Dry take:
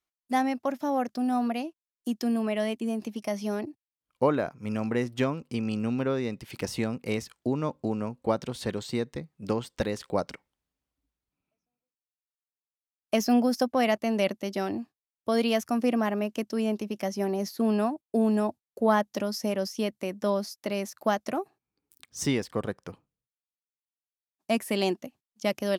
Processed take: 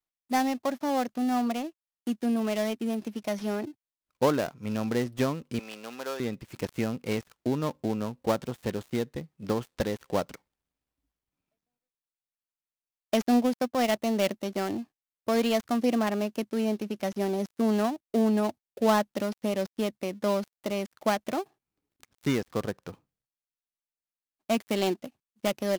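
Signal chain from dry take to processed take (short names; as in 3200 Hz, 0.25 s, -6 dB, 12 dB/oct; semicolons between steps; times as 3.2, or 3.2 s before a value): switching dead time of 0.13 ms; 5.59–6.2 HPF 650 Hz 12 dB/oct; 13.31–13.95 transient shaper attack -4 dB, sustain -8 dB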